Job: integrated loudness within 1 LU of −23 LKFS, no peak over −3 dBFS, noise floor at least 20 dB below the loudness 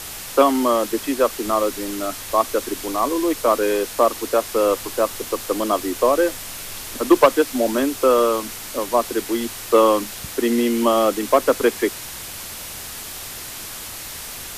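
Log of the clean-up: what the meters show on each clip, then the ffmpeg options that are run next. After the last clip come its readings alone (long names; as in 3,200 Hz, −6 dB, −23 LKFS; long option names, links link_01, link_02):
background noise floor −34 dBFS; target noise floor −40 dBFS; integrated loudness −20.0 LKFS; sample peak −2.5 dBFS; target loudness −23.0 LKFS
→ -af "afftdn=noise_reduction=6:noise_floor=-34"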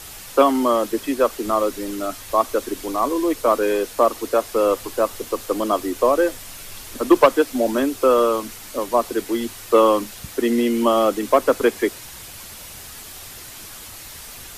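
background noise floor −38 dBFS; target noise floor −40 dBFS
→ -af "afftdn=noise_reduction=6:noise_floor=-38"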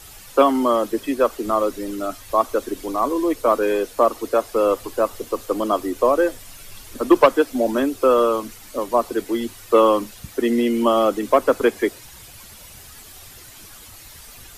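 background noise floor −43 dBFS; integrated loudness −20.0 LKFS; sample peak −3.0 dBFS; target loudness −23.0 LKFS
→ -af "volume=-3dB"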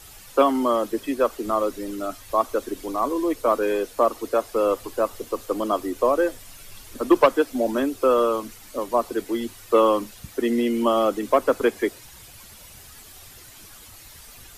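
integrated loudness −23.0 LKFS; sample peak −6.0 dBFS; background noise floor −46 dBFS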